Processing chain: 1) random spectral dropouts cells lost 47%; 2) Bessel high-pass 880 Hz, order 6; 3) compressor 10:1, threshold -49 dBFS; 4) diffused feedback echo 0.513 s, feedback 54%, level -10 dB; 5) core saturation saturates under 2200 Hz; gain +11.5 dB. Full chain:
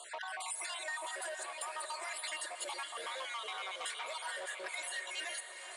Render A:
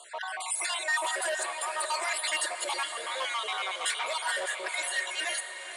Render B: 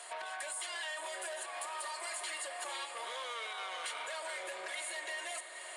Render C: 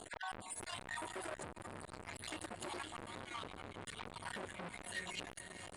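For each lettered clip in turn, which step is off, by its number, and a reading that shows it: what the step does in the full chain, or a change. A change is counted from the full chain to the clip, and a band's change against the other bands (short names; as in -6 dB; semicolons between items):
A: 3, mean gain reduction 8.0 dB; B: 1, 500 Hz band +1.5 dB; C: 2, 250 Hz band +19.0 dB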